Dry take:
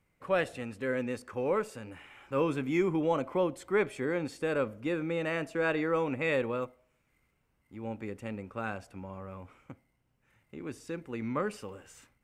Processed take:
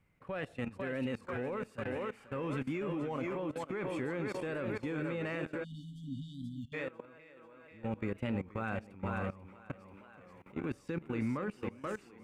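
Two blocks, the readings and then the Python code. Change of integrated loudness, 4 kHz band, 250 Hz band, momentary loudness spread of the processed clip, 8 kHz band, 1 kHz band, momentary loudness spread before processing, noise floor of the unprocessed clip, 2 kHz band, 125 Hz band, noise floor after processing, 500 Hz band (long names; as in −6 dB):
−6.0 dB, −5.5 dB, −3.0 dB, 12 LU, can't be measured, −6.0 dB, 16 LU, −75 dBFS, −5.5 dB, 0.0 dB, −60 dBFS, −7.5 dB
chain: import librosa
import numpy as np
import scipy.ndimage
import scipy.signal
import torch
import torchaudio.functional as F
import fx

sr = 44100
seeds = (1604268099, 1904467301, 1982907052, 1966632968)

p1 = 10.0 ** (-27.5 / 20.0) * np.tanh(x / 10.0 ** (-27.5 / 20.0))
p2 = x + (p1 * librosa.db_to_amplitude(-11.0))
p3 = fx.tilt_eq(p2, sr, slope=1.5)
p4 = fx.rider(p3, sr, range_db=4, speed_s=0.5)
p5 = p4 + fx.echo_thinned(p4, sr, ms=489, feedback_pct=63, hz=190.0, wet_db=-6.5, dry=0)
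p6 = fx.level_steps(p5, sr, step_db=19)
p7 = fx.spec_erase(p6, sr, start_s=5.64, length_s=1.1, low_hz=300.0, high_hz=2900.0)
p8 = fx.bass_treble(p7, sr, bass_db=9, treble_db=-11)
y = fx.record_warp(p8, sr, rpm=33.33, depth_cents=100.0)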